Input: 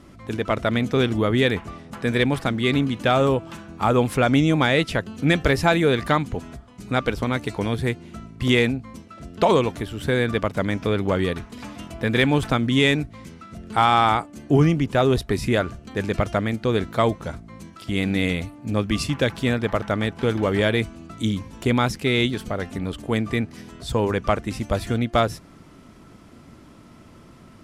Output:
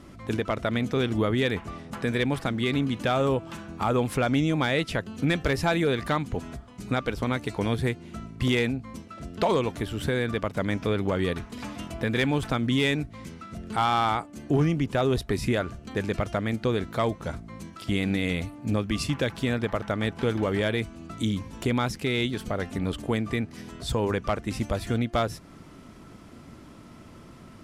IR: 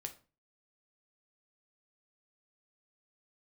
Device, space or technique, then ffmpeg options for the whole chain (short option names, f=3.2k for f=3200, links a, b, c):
clipper into limiter: -af "asoftclip=type=hard:threshold=-10dB,alimiter=limit=-16dB:level=0:latency=1:release=319"